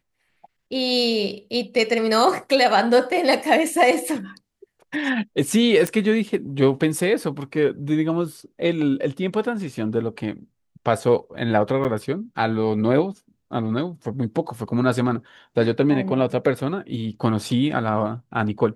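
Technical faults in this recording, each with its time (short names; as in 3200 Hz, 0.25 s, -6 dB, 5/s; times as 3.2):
5.87 pop -9 dBFS
11.84–11.85 gap 8.4 ms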